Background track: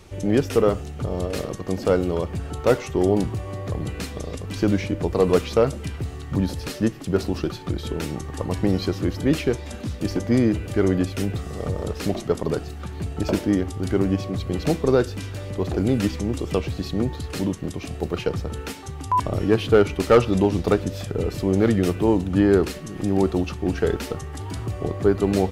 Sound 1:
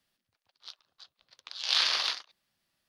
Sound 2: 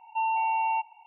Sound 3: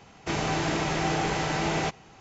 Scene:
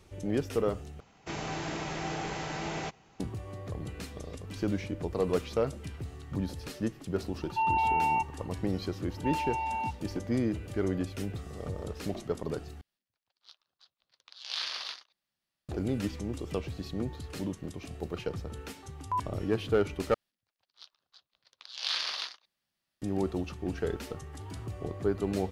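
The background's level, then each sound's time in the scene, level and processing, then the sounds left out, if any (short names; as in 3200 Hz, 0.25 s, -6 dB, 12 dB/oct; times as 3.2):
background track -10.5 dB
1 replace with 3 -8.5 dB
7.41 add 2 -0.5 dB
9.09 add 2 -6.5 dB
12.81 replace with 1 -9 dB
20.14 replace with 1 -6 dB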